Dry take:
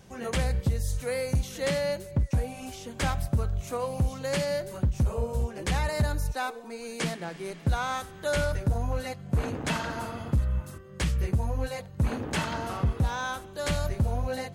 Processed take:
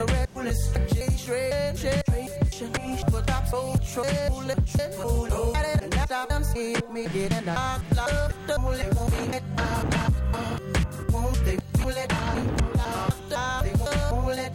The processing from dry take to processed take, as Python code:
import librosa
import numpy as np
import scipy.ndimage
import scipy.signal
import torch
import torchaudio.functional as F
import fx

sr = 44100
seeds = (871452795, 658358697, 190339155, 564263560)

y = fx.block_reorder(x, sr, ms=252.0, group=2)
y = fx.band_squash(y, sr, depth_pct=100)
y = y * 10.0 ** (2.5 / 20.0)